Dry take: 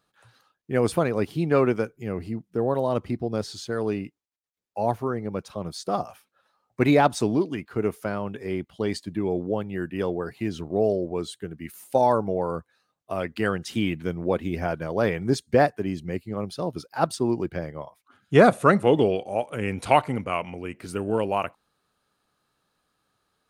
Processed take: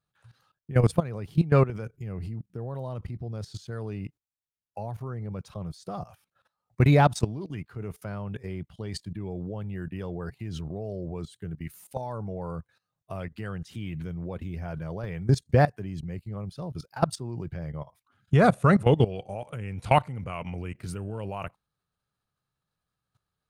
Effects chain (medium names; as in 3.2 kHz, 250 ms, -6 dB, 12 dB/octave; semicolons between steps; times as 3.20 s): resonant low shelf 190 Hz +9.5 dB, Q 1.5; level held to a coarse grid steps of 17 dB